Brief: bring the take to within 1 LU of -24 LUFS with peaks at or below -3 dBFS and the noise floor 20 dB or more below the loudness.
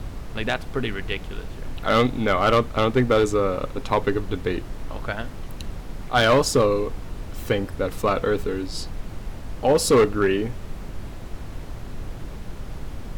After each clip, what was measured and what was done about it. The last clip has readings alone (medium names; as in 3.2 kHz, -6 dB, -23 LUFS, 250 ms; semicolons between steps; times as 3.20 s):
clipped samples 0.7%; clipping level -11.5 dBFS; noise floor -36 dBFS; noise floor target -43 dBFS; loudness -22.5 LUFS; peak level -11.5 dBFS; loudness target -24.0 LUFS
-> clip repair -11.5 dBFS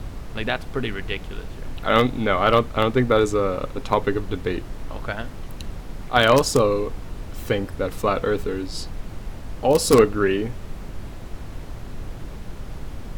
clipped samples 0.0%; noise floor -36 dBFS; noise floor target -42 dBFS
-> noise print and reduce 6 dB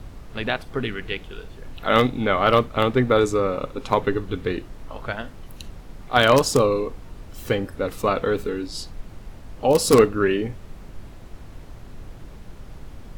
noise floor -42 dBFS; loudness -22.0 LUFS; peak level -2.5 dBFS; loudness target -24.0 LUFS
-> trim -2 dB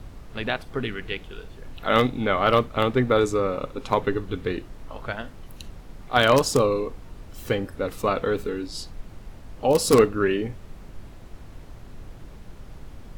loudness -24.0 LUFS; peak level -4.5 dBFS; noise floor -44 dBFS